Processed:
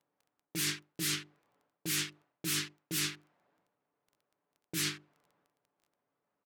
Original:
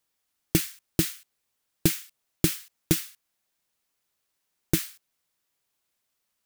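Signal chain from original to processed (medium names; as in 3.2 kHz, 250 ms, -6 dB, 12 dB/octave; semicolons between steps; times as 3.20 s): level-controlled noise filter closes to 880 Hz, open at -21 dBFS; peak limiter -12.5 dBFS, peak gain reduction 5.5 dB; high-pass 150 Hz 12 dB/octave; treble shelf 9.9 kHz -4 dB; hum notches 50/100/150/200/250/300/350/400 Hz; comb 6.9 ms, depth 36%; reverse; compression 12:1, threshold -37 dBFS, peak gain reduction 15.5 dB; reverse; transient shaper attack -7 dB, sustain +9 dB; crackle 11 per s -61 dBFS; trim +7.5 dB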